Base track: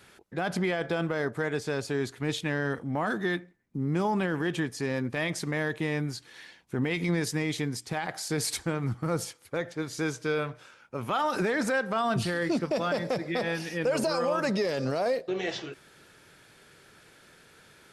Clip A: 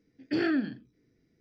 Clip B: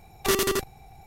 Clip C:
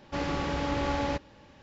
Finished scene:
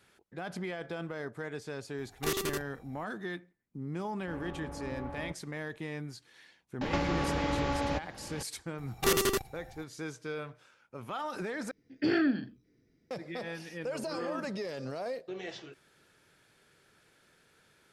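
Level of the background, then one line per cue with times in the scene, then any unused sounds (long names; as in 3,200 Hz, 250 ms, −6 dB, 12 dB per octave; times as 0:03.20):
base track −9.5 dB
0:01.98: mix in B −9.5 dB
0:04.15: mix in C −11.5 dB + low-pass filter 1,200 Hz
0:06.81: mix in C −2 dB + multiband upward and downward compressor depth 100%
0:08.78: mix in B −3.5 dB
0:11.71: overwrite with A
0:13.80: mix in A −14.5 dB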